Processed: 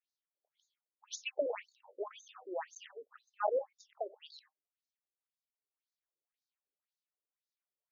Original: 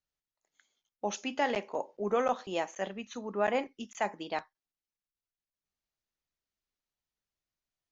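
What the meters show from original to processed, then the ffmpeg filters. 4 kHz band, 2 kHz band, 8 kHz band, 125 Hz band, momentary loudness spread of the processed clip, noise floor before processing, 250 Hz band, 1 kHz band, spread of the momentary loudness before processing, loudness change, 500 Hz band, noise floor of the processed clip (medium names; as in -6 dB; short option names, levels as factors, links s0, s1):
-7.0 dB, -11.0 dB, no reading, under -40 dB, 20 LU, under -85 dBFS, -17.0 dB, -9.0 dB, 9 LU, -6.0 dB, -6.0 dB, under -85 dBFS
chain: -af "tremolo=f=0.62:d=0.38,afftfilt=real='re*between(b*sr/1024,410*pow(5200/410,0.5+0.5*sin(2*PI*1.9*pts/sr))/1.41,410*pow(5200/410,0.5+0.5*sin(2*PI*1.9*pts/sr))*1.41)':imag='im*between(b*sr/1024,410*pow(5200/410,0.5+0.5*sin(2*PI*1.9*pts/sr))/1.41,410*pow(5200/410,0.5+0.5*sin(2*PI*1.9*pts/sr))*1.41)':win_size=1024:overlap=0.75,volume=1.12"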